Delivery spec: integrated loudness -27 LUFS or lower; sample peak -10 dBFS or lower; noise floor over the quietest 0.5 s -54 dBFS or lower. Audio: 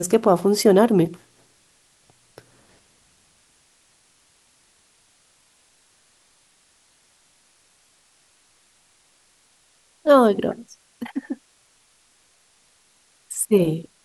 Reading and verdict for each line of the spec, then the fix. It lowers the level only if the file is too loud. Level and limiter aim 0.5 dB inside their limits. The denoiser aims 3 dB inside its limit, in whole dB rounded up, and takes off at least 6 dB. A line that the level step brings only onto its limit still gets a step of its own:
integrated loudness -19.5 LUFS: fail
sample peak -4.0 dBFS: fail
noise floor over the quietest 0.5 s -60 dBFS: pass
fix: trim -8 dB

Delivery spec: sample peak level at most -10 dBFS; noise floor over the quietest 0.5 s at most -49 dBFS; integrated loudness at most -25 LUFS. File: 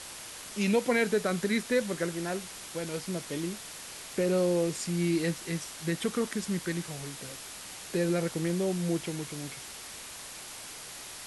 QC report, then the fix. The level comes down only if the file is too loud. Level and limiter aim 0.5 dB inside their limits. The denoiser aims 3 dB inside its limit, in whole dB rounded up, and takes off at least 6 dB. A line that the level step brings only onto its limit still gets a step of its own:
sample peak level -14.0 dBFS: pass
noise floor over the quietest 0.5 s -44 dBFS: fail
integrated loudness -32.0 LUFS: pass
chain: noise reduction 8 dB, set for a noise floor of -44 dBFS

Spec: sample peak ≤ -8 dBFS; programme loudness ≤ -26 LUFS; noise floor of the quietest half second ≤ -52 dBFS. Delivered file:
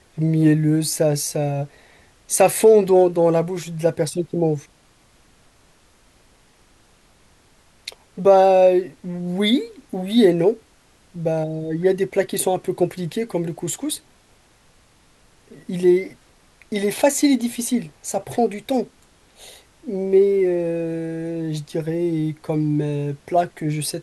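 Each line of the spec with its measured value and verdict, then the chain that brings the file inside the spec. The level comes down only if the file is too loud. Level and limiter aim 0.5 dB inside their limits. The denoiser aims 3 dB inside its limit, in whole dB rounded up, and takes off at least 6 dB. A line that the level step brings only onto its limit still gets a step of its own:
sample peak -4.0 dBFS: fail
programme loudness -20.0 LUFS: fail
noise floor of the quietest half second -55 dBFS: pass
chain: trim -6.5 dB

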